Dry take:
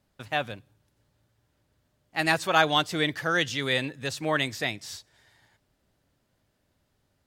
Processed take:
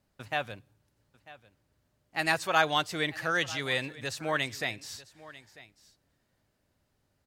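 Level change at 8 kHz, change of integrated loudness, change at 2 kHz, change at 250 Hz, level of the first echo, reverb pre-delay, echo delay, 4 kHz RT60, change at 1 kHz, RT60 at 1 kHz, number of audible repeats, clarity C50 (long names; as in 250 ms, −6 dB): −2.5 dB, −3.5 dB, −2.5 dB, −6.5 dB, −19.0 dB, no reverb audible, 945 ms, no reverb audible, −3.0 dB, no reverb audible, 1, no reverb audible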